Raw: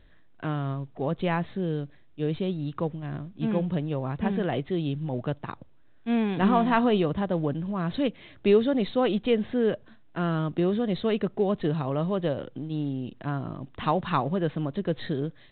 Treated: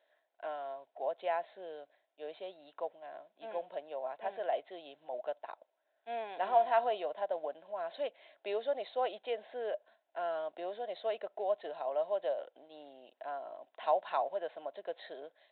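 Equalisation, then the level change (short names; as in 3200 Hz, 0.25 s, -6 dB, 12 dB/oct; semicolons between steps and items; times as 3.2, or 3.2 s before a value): ladder high-pass 590 Hz, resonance 70%; Butterworth band-stop 1200 Hz, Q 6.9; 0.0 dB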